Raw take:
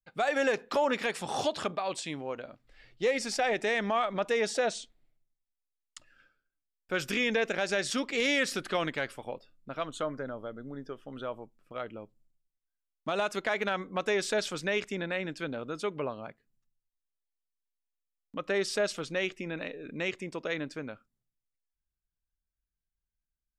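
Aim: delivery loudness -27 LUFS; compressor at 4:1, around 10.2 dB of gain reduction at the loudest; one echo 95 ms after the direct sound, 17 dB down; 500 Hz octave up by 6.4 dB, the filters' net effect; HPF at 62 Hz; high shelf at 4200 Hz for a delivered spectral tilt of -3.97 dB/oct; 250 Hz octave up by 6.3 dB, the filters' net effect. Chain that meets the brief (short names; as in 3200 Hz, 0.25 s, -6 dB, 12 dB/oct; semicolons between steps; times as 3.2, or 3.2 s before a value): HPF 62 Hz; bell 250 Hz +6 dB; bell 500 Hz +6 dB; high shelf 4200 Hz +4.5 dB; compressor 4:1, threshold -30 dBFS; echo 95 ms -17 dB; gain +7.5 dB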